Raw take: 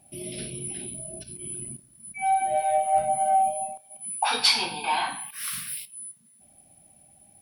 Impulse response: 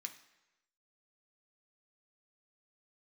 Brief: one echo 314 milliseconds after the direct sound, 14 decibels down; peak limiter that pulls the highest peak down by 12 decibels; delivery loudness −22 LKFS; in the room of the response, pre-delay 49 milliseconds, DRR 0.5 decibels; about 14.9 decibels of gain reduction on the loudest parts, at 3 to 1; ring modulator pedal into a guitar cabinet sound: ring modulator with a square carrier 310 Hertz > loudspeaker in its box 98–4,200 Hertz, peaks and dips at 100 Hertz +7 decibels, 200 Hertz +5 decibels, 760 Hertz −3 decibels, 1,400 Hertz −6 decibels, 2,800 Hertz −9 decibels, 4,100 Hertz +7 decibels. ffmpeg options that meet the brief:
-filter_complex "[0:a]acompressor=threshold=-38dB:ratio=3,alimiter=level_in=10.5dB:limit=-24dB:level=0:latency=1,volume=-10.5dB,aecho=1:1:314:0.2,asplit=2[link_01][link_02];[1:a]atrim=start_sample=2205,adelay=49[link_03];[link_02][link_03]afir=irnorm=-1:irlink=0,volume=3.5dB[link_04];[link_01][link_04]amix=inputs=2:normalize=0,aeval=exprs='val(0)*sgn(sin(2*PI*310*n/s))':channel_layout=same,highpass=98,equalizer=frequency=100:width_type=q:width=4:gain=7,equalizer=frequency=200:width_type=q:width=4:gain=5,equalizer=frequency=760:width_type=q:width=4:gain=-3,equalizer=frequency=1400:width_type=q:width=4:gain=-6,equalizer=frequency=2800:width_type=q:width=4:gain=-9,equalizer=frequency=4100:width_type=q:width=4:gain=7,lowpass=frequency=4200:width=0.5412,lowpass=frequency=4200:width=1.3066,volume=22dB"

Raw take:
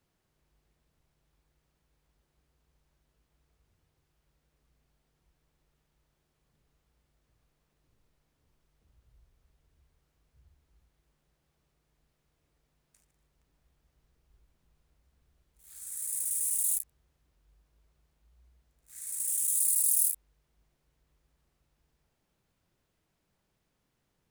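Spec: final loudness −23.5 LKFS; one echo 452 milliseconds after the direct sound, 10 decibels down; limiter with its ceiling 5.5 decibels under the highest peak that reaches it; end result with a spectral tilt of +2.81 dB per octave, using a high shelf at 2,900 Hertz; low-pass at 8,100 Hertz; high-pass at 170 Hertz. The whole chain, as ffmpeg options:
ffmpeg -i in.wav -af "highpass=170,lowpass=8100,highshelf=frequency=2900:gain=4.5,alimiter=limit=-23dB:level=0:latency=1,aecho=1:1:452:0.316,volume=8.5dB" out.wav

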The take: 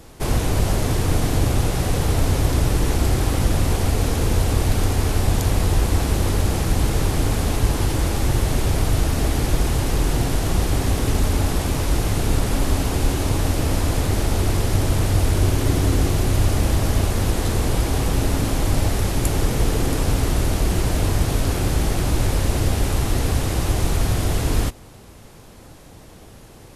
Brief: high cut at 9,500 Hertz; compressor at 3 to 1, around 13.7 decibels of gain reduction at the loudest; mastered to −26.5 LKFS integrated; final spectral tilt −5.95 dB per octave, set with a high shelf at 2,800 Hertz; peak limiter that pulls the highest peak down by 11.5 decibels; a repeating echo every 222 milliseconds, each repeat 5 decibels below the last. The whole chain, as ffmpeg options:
ffmpeg -i in.wav -af "lowpass=9500,highshelf=frequency=2800:gain=-4.5,acompressor=threshold=-33dB:ratio=3,alimiter=level_in=7dB:limit=-24dB:level=0:latency=1,volume=-7dB,aecho=1:1:222|444|666|888|1110|1332|1554:0.562|0.315|0.176|0.0988|0.0553|0.031|0.0173,volume=13dB" out.wav

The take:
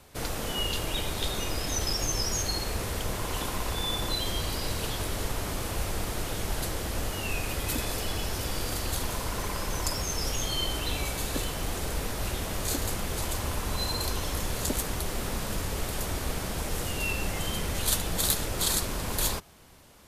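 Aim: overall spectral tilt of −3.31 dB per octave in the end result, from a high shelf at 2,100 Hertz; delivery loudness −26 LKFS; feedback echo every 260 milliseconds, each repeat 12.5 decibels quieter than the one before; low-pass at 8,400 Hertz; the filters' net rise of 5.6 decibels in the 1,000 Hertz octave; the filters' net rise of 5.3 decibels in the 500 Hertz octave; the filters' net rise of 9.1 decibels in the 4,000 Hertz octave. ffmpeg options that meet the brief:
ffmpeg -i in.wav -af "lowpass=8400,equalizer=frequency=500:width_type=o:gain=5,equalizer=frequency=1000:width_type=o:gain=4,highshelf=frequency=2100:gain=5,equalizer=frequency=4000:width_type=o:gain=6.5,aecho=1:1:260|520|780:0.237|0.0569|0.0137,volume=-1dB" out.wav

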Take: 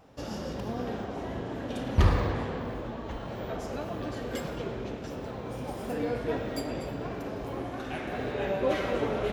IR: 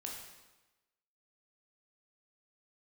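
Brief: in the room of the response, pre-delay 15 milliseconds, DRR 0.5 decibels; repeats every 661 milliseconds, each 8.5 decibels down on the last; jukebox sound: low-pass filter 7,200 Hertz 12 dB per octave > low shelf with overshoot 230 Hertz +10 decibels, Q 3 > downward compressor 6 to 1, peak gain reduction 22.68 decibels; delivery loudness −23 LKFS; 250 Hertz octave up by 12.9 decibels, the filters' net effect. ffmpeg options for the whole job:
-filter_complex "[0:a]equalizer=frequency=250:width_type=o:gain=8.5,aecho=1:1:661|1322|1983|2644:0.376|0.143|0.0543|0.0206,asplit=2[link_01][link_02];[1:a]atrim=start_sample=2205,adelay=15[link_03];[link_02][link_03]afir=irnorm=-1:irlink=0,volume=1dB[link_04];[link_01][link_04]amix=inputs=2:normalize=0,lowpass=7200,lowshelf=frequency=230:width_type=q:width=3:gain=10,acompressor=threshold=-27dB:ratio=6,volume=8dB"

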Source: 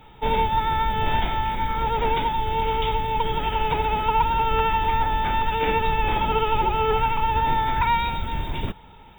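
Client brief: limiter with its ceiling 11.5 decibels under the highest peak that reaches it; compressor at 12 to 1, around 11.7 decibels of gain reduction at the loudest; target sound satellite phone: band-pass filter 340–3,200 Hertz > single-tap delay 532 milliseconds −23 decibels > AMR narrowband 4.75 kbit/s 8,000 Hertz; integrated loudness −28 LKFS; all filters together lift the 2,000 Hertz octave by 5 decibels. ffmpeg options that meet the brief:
ffmpeg -i in.wav -af "equalizer=frequency=2000:width_type=o:gain=7.5,acompressor=threshold=-27dB:ratio=12,alimiter=level_in=4.5dB:limit=-24dB:level=0:latency=1,volume=-4.5dB,highpass=340,lowpass=3200,aecho=1:1:532:0.0708,volume=11dB" -ar 8000 -c:a libopencore_amrnb -b:a 4750 out.amr

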